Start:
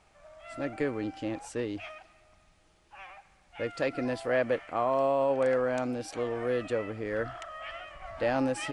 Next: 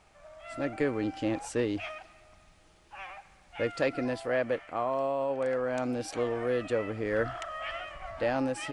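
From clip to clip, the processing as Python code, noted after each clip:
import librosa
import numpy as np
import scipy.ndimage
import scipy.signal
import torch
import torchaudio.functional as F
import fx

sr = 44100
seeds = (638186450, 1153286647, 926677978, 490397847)

y = fx.rider(x, sr, range_db=4, speed_s=0.5)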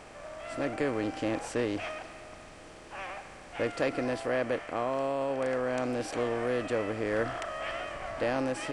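y = fx.bin_compress(x, sr, power=0.6)
y = y * 10.0 ** (-3.5 / 20.0)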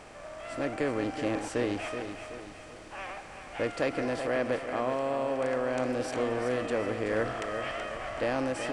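y = fx.echo_feedback(x, sr, ms=377, feedback_pct=42, wet_db=-8.5)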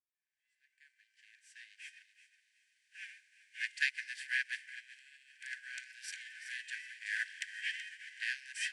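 y = fx.fade_in_head(x, sr, length_s=2.86)
y = fx.brickwall_highpass(y, sr, low_hz=1500.0)
y = fx.upward_expand(y, sr, threshold_db=-54.0, expansion=2.5)
y = y * 10.0 ** (8.0 / 20.0)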